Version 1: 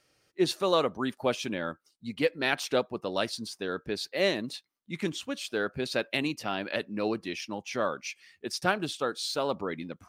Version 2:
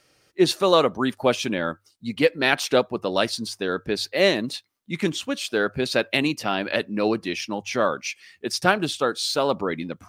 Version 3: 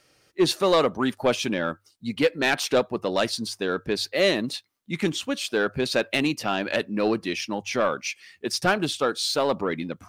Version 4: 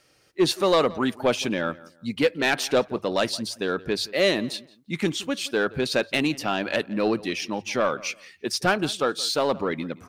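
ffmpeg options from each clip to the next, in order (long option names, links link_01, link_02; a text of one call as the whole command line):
ffmpeg -i in.wav -af "bandreject=frequency=50:width_type=h:width=6,bandreject=frequency=100:width_type=h:width=6,volume=7.5dB" out.wav
ffmpeg -i in.wav -af "asoftclip=type=tanh:threshold=-12dB" out.wav
ffmpeg -i in.wav -filter_complex "[0:a]asplit=2[link_01][link_02];[link_02]adelay=172,lowpass=frequency=3000:poles=1,volume=-20dB,asplit=2[link_03][link_04];[link_04]adelay=172,lowpass=frequency=3000:poles=1,volume=0.26[link_05];[link_01][link_03][link_05]amix=inputs=3:normalize=0" out.wav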